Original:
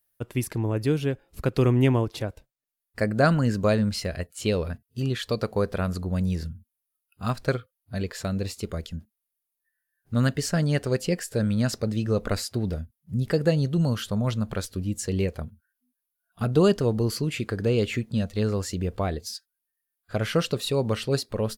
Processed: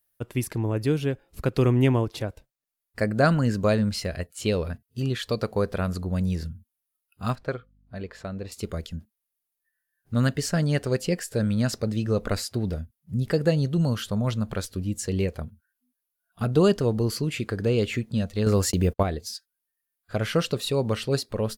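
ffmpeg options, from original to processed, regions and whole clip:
-filter_complex "[0:a]asettb=1/sr,asplit=3[s0][s1][s2];[s0]atrim=end=7.354[s3];[s1]atrim=start=7.35:end=8.52,asetpts=PTS-STARTPTS,afade=t=in:d=0.004:c=qsin,afade=t=out:st=1.166:d=0.004:c=qsin,lowpass=f=1300:p=1,lowshelf=f=390:g=-8,aeval=exprs='val(0)+0.001*(sin(2*PI*50*n/s)+sin(2*PI*2*50*n/s)/2+sin(2*PI*3*50*n/s)/3+sin(2*PI*4*50*n/s)/4+sin(2*PI*5*50*n/s)/5)':c=same[s4];[s2]atrim=start=8.516[s5];[s3][s4]acrossfade=d=0.004:c1=hsin:c2=qsin[s6];[s6][s5]acrossfade=d=0.004:c1=qsin:c2=hsin,asettb=1/sr,asplit=3[s7][s8][s9];[s7]atrim=end=18.464[s10];[s8]atrim=start=18.46:end=19.03,asetpts=PTS-STARTPTS,afade=t=in:d=0.004:c=qsin,afade=t=out:st=0.566:d=0.004:c=qsin,agate=range=0.00316:threshold=0.0158:ratio=16:release=100:detection=peak,highshelf=f=10000:g=9.5,acontrast=47[s11];[s9]atrim=start=19.026[s12];[s10][s11]acrossfade=d=0.004:c1=hsin:c2=qsin[s13];[s13][s12]acrossfade=d=0.004:c1=qsin:c2=hsin"

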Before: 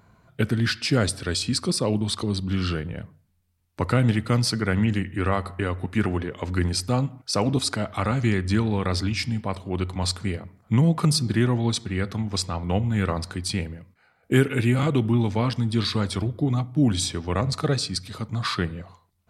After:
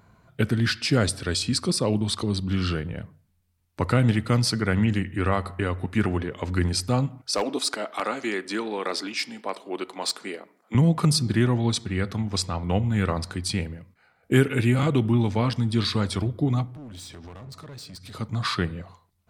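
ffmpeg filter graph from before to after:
-filter_complex "[0:a]asettb=1/sr,asplit=3[s0][s1][s2];[s0]atrim=end=7.354[s3];[s1]atrim=start=7.35:end=10.75,asetpts=PTS-STARTPTS,afade=t=in:d=0.004:c=qsin,afade=t=out:st=3.396:d=0.004:c=qsin,highpass=f=300:w=0.5412,highpass=f=300:w=1.3066,aeval=exprs='0.158*(abs(mod(val(0)/0.158+3,4)-2)-1)':c=same[s4];[s2]atrim=start=10.746[s5];[s3][s4]acrossfade=d=0.004:c1=hsin:c2=qsin[s6];[s6][s5]acrossfade=d=0.004:c1=qsin:c2=hsin,asettb=1/sr,asplit=3[s7][s8][s9];[s7]atrim=end=16.674[s10];[s8]atrim=start=16.67:end=18.15,asetpts=PTS-STARTPTS,afade=t=in:d=0.004:c=qsin,afade=t=out:st=1.476:d=0.004:c=qsin,acompressor=threshold=0.0158:ratio=6:attack=3.2:release=140:knee=1:detection=peak,asoftclip=type=hard:threshold=0.0133[s11];[s9]atrim=start=18.146[s12];[s10][s11]acrossfade=d=0.004:c1=hsin:c2=qsin[s13];[s13][s12]acrossfade=d=0.004:c1=qsin:c2=hsin"

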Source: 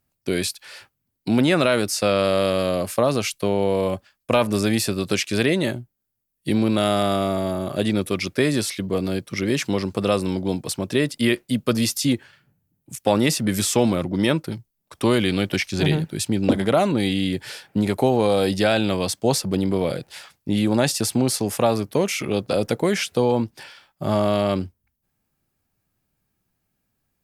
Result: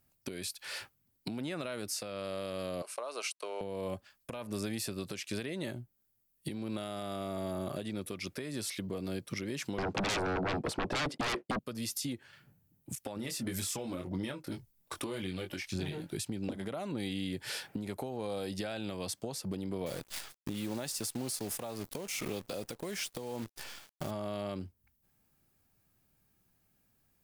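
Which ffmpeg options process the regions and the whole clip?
-filter_complex "[0:a]asettb=1/sr,asplit=3[s0][s1][s2];[s0]atrim=end=2.824[s3];[s1]atrim=start=2.82:end=3.61,asetpts=PTS-STARTPTS,afade=t=in:d=0.004:c=qsin,afade=t=out:st=0.786:d=0.004:c=qsin,aeval=exprs='sgn(val(0))*max(abs(val(0))-0.00447,0)':c=same,highpass=f=480:w=0.5412,highpass=f=480:w=1.3066,equalizer=f=520:t=q:w=4:g=-5,equalizer=f=750:t=q:w=4:g=-6,equalizer=f=1800:t=q:w=4:g=-9,equalizer=f=3400:t=q:w=4:g=-7,equalizer=f=4900:t=q:w=4:g=-4,equalizer=f=7000:t=q:w=4:g=-7,lowpass=f=9400:w=0.5412,lowpass=f=9400:w=1.3066[s4];[s2]atrim=start=3.606[s5];[s3][s4]acrossfade=d=0.004:c1=hsin:c2=qsin[s6];[s6][s5]acrossfade=d=0.004:c1=qsin:c2=hsin,asettb=1/sr,asplit=3[s7][s8][s9];[s7]atrim=end=9.784[s10];[s8]atrim=start=9.78:end=11.59,asetpts=PTS-STARTPTS,afade=t=in:d=0.004:c=qsin,afade=t=out:st=1.806:d=0.004:c=qsin,agate=range=0.0224:threshold=0.0141:ratio=3:release=100:detection=peak,bandpass=f=440:t=q:w=0.73,aeval=exprs='0.316*sin(PI/2*10*val(0)/0.316)':c=same[s11];[s9]atrim=start=11.586[s12];[s10][s11]acrossfade=d=0.004:c1=hsin:c2=qsin[s13];[s13][s12]acrossfade=d=0.004:c1=qsin:c2=hsin,asettb=1/sr,asplit=3[s14][s15][s16];[s14]atrim=end=13.164[s17];[s15]atrim=start=13.16:end=16.17,asetpts=PTS-STARTPTS,afade=t=in:d=0.004:c=qsin,afade=t=out:st=3.006:d=0.004:c=qsin,aphaser=in_gain=1:out_gain=1:delay=3.7:decay=0.41:speed=1.9:type=triangular,asplit=2[s18][s19];[s19]adelay=22,volume=0.501[s20];[s18][s20]amix=inputs=2:normalize=0,atrim=end_sample=132741[s21];[s16]atrim=start=16.166[s22];[s17][s21]acrossfade=d=0.004:c1=hsin:c2=qsin[s23];[s23][s22]acrossfade=d=0.004:c1=qsin:c2=hsin,asettb=1/sr,asplit=3[s24][s25][s26];[s24]atrim=end=19.864[s27];[s25]atrim=start=19.86:end=24.11,asetpts=PTS-STARTPTS,afade=t=in:d=0.004:c=qsin,afade=t=out:st=4.246:d=0.004:c=qsin,bass=f=250:g=-2,treble=f=4000:g=4,acrusher=bits=6:dc=4:mix=0:aa=0.000001[s28];[s26]atrim=start=24.106[s29];[s27][s28]acrossfade=d=0.004:c1=hsin:c2=qsin[s30];[s30][s29]acrossfade=d=0.004:c1=qsin:c2=hsin,acompressor=threshold=0.0251:ratio=12,highshelf=f=8800:g=4,alimiter=level_in=1.19:limit=0.0631:level=0:latency=1:release=270,volume=0.841"

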